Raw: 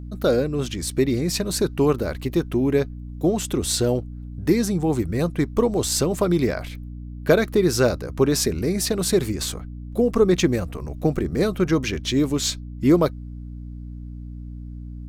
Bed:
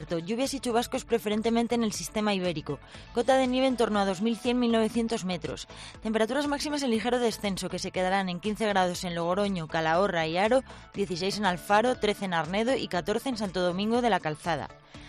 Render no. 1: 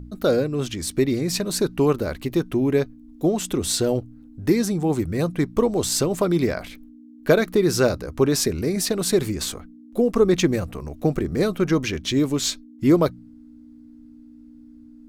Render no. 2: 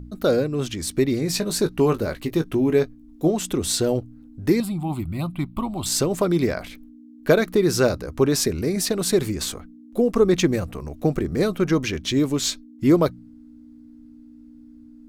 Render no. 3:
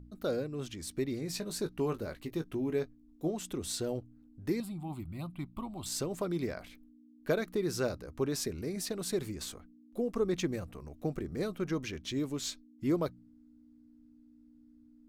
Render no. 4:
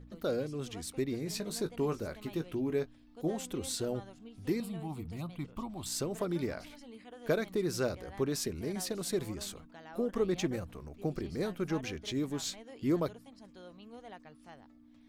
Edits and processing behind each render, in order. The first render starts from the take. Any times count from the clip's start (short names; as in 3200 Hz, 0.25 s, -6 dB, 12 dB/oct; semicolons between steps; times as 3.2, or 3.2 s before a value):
de-hum 60 Hz, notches 3
1.2–3.31 doubler 19 ms -9 dB; 4.6–5.86 fixed phaser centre 1700 Hz, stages 6
gain -13.5 dB
add bed -24.5 dB